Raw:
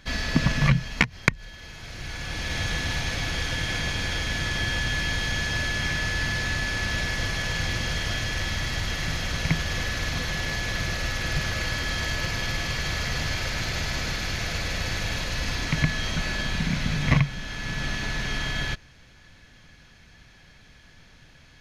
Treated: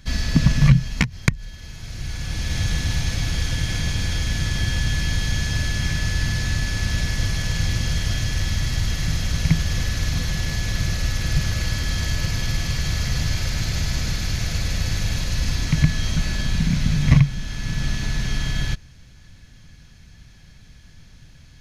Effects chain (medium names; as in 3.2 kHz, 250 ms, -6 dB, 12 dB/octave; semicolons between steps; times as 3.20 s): tone controls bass +12 dB, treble +9 dB; trim -3.5 dB